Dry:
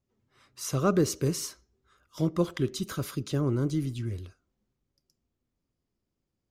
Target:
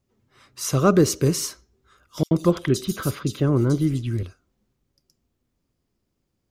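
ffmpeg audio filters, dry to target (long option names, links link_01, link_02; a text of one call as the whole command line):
ffmpeg -i in.wav -filter_complex "[0:a]asettb=1/sr,asplit=3[link_01][link_02][link_03];[link_01]atrim=end=2.234[link_04];[link_02]atrim=start=2.23:end=4.23,asetpts=PTS-STARTPTS,afade=type=in:duration=0.004:curve=qsin,afade=type=out:start_time=1.996:duration=0.004:curve=qsin,acrossover=split=3700[link_05][link_06];[link_05]adelay=80[link_07];[link_07][link_06]amix=inputs=2:normalize=0,atrim=end_sample=88200[link_08];[link_03]atrim=start=4.226[link_09];[link_04][link_08]acrossfade=duration=0.004:curve1=hsin:curve2=qsin[link_10];[link_10][link_09]acrossfade=duration=0.004:curve1=qsin:curve2=hsin,volume=7.5dB" out.wav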